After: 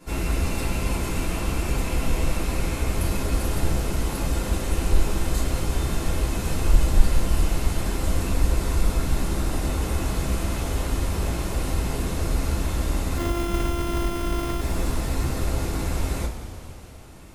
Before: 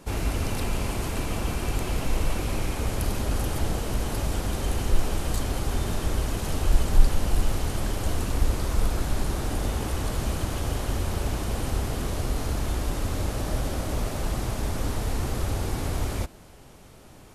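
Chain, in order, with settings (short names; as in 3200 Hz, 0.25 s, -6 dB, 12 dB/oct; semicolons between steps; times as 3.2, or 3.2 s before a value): 13.17–14.61 sample sorter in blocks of 128 samples; two-slope reverb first 0.22 s, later 3.2 s, from -18 dB, DRR -9 dB; gain -7 dB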